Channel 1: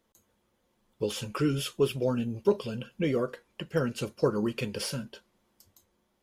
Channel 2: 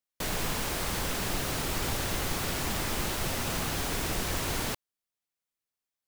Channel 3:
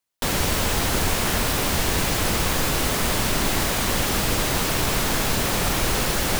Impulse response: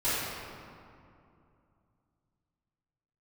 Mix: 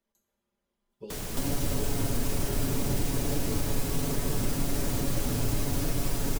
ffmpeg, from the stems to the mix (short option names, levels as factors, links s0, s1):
-filter_complex "[0:a]aecho=1:1:5:0.65,volume=0.2,asplit=2[s0][s1];[s1]volume=0.224[s2];[1:a]adelay=900,volume=0.75[s3];[2:a]alimiter=limit=0.1:level=0:latency=1,aecho=1:1:7.1:0.65,adelay=1150,volume=1.12,asplit=2[s4][s5];[s5]volume=0.251[s6];[3:a]atrim=start_sample=2205[s7];[s2][s6]amix=inputs=2:normalize=0[s8];[s8][s7]afir=irnorm=-1:irlink=0[s9];[s0][s3][s4][s9]amix=inputs=4:normalize=0,acrossover=split=490|5300[s10][s11][s12];[s10]acompressor=threshold=0.0708:ratio=4[s13];[s11]acompressor=threshold=0.00562:ratio=4[s14];[s12]acompressor=threshold=0.0141:ratio=4[s15];[s13][s14][s15]amix=inputs=3:normalize=0"